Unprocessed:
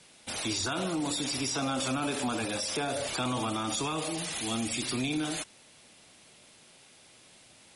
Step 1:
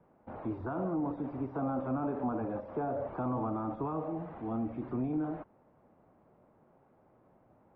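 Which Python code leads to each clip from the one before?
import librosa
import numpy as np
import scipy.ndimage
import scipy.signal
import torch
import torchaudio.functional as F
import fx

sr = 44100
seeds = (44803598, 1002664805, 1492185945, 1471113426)

y = scipy.signal.sosfilt(scipy.signal.butter(4, 1100.0, 'lowpass', fs=sr, output='sos'), x)
y = F.gain(torch.from_numpy(y), -1.0).numpy()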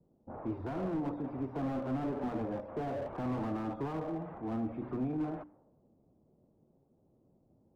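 y = fx.hum_notches(x, sr, base_hz=60, count=5)
y = fx.env_lowpass(y, sr, base_hz=310.0, full_db=-33.0)
y = fx.slew_limit(y, sr, full_power_hz=10.0)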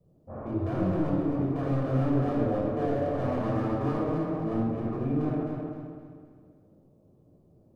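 y = fx.echo_feedback(x, sr, ms=261, feedback_pct=40, wet_db=-5)
y = fx.room_shoebox(y, sr, seeds[0], volume_m3=3200.0, walls='furnished', distance_m=5.9)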